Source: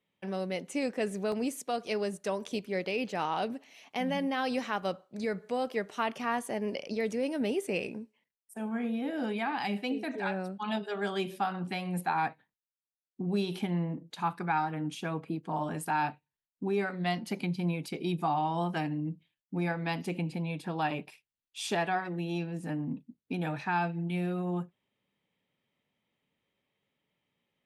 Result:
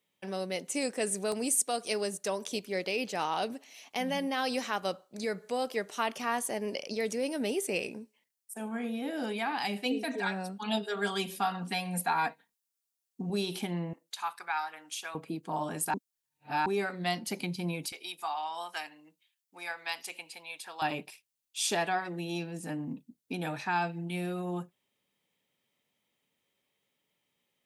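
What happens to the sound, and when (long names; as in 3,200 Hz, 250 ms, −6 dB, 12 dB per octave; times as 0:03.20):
0:00.74–0:02.07: parametric band 8,900 Hz +10.5 dB 0.33 octaves
0:09.85–0:13.30: comb filter 4.3 ms
0:13.93–0:15.15: high-pass filter 1,000 Hz
0:15.94–0:16.66: reverse
0:17.92–0:20.82: high-pass filter 1,000 Hz
whole clip: bass and treble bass −5 dB, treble +10 dB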